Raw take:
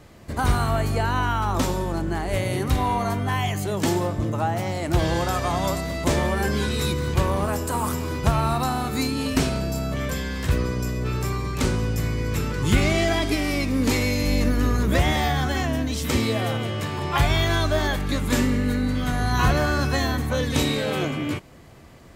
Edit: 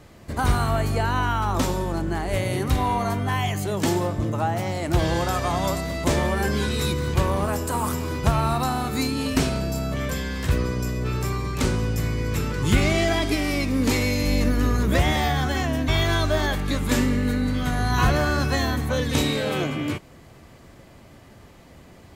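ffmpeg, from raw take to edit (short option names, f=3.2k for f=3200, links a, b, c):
-filter_complex "[0:a]asplit=2[a][b];[a]atrim=end=15.882[c];[b]atrim=start=17.288[d];[c][d]acrossfade=d=0.004:c1=hsin:c2=hsin"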